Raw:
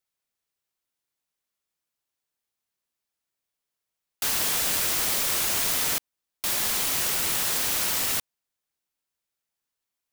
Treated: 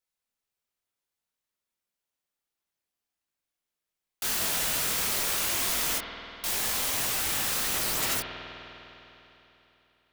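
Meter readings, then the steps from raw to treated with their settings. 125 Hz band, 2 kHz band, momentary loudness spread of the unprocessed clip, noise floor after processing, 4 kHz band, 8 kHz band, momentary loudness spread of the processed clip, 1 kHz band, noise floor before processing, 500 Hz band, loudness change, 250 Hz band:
-0.5 dB, -1.0 dB, 5 LU, under -85 dBFS, -2.5 dB, -3.0 dB, 10 LU, -1.0 dB, under -85 dBFS, -1.0 dB, -3.0 dB, -0.5 dB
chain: chorus voices 4, 1.4 Hz, delay 21 ms, depth 3 ms; spring tank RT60 3.4 s, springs 50 ms, chirp 45 ms, DRR 3.5 dB

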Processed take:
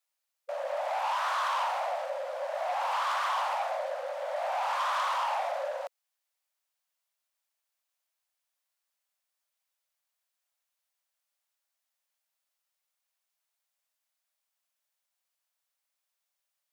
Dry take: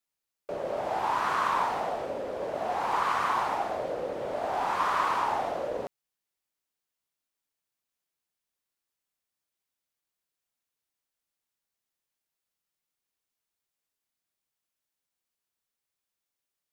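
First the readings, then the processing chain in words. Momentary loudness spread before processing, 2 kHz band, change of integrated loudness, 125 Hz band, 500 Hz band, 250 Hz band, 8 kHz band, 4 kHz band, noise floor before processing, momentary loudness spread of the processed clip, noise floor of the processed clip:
8 LU, -1.0 dB, -2.0 dB, under -40 dB, -1.5 dB, under -40 dB, +0.5 dB, +2.5 dB, under -85 dBFS, 7 LU, -85 dBFS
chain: saturation -28.5 dBFS, distortion -10 dB; brick-wall FIR high-pass 510 Hz; trim +2.5 dB

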